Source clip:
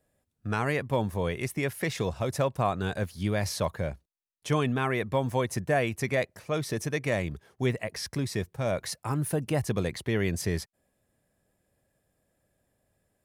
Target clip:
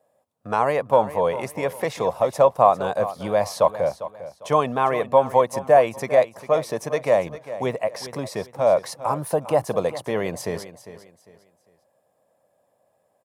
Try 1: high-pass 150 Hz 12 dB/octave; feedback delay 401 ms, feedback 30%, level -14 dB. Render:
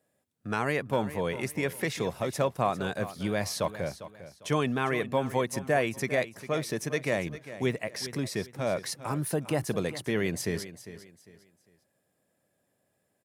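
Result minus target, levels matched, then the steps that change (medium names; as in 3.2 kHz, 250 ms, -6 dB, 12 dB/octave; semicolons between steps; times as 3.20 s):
1 kHz band -3.5 dB
add after high-pass: high-order bell 750 Hz +13 dB 1.5 oct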